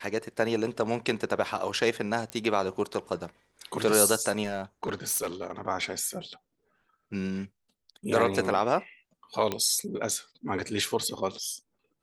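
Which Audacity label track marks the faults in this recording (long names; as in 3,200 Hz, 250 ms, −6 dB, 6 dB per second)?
2.300000	2.300000	click −19 dBFS
4.440000	5.510000	clipping −25 dBFS
9.520000	9.520000	click −14 dBFS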